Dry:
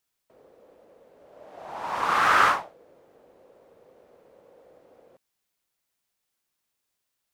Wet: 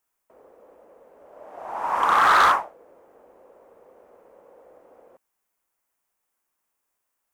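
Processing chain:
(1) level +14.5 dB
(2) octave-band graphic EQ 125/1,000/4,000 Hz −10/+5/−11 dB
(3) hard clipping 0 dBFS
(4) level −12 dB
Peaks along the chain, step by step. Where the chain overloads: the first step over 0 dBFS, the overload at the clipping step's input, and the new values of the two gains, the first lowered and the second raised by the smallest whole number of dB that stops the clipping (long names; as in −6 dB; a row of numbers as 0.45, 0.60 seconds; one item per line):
+7.5, +10.0, 0.0, −12.0 dBFS
step 1, 10.0 dB
step 1 +4.5 dB, step 4 −2 dB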